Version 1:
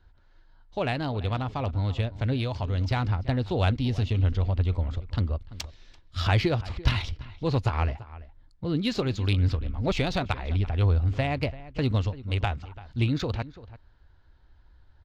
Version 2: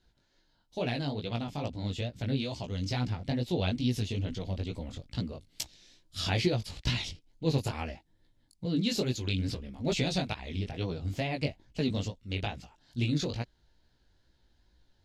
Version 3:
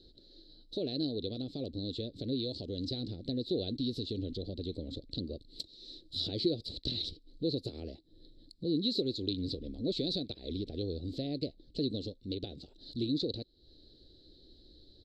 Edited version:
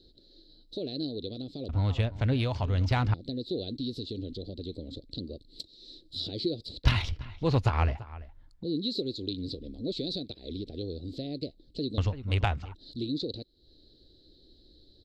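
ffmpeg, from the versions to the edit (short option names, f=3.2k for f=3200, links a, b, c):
-filter_complex "[0:a]asplit=3[a][b][c];[2:a]asplit=4[d][e][f][g];[d]atrim=end=1.692[h];[a]atrim=start=1.688:end=3.142[i];[e]atrim=start=3.138:end=6.842[j];[b]atrim=start=6.838:end=8.632[k];[f]atrim=start=8.628:end=11.982[l];[c]atrim=start=11.978:end=12.752[m];[g]atrim=start=12.748[n];[h][i]acrossfade=d=0.004:c1=hsin:c2=hsin[o];[o][j]acrossfade=d=0.004:c1=hsin:c2=hsin[p];[p][k]acrossfade=d=0.004:c1=hsin:c2=hsin[q];[q][l]acrossfade=d=0.004:c1=hsin:c2=hsin[r];[r][m]acrossfade=d=0.004:c1=hsin:c2=hsin[s];[s][n]acrossfade=d=0.004:c1=hsin:c2=hsin"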